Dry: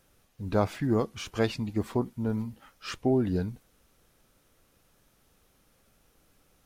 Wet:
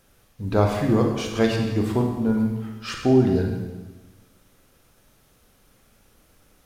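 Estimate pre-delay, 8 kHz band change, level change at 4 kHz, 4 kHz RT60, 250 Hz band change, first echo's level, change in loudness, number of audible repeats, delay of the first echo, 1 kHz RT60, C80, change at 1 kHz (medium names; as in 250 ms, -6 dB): 25 ms, +6.5 dB, +6.5 dB, 1.2 s, +8.0 dB, no echo, +7.5 dB, no echo, no echo, 1.2 s, 5.5 dB, +7.0 dB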